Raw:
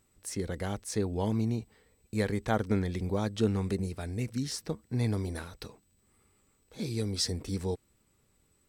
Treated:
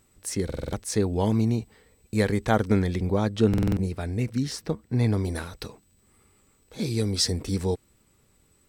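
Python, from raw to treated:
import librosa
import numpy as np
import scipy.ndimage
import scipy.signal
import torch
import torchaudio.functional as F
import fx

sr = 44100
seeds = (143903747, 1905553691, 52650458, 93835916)

y = fx.peak_eq(x, sr, hz=10000.0, db=-6.5, octaves=2.2, at=(2.95, 5.25))
y = fx.buffer_glitch(y, sr, at_s=(0.45, 3.49), block=2048, repeats=5)
y = y * 10.0 ** (6.5 / 20.0)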